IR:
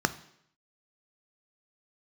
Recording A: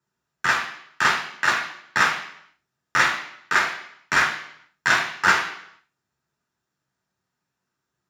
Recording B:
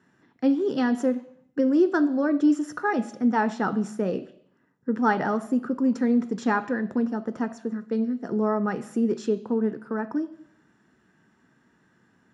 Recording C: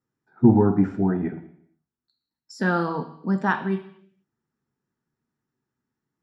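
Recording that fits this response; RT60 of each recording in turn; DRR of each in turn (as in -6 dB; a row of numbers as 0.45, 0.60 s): B; 0.70, 0.70, 0.70 s; 0.0, 11.0, 6.5 dB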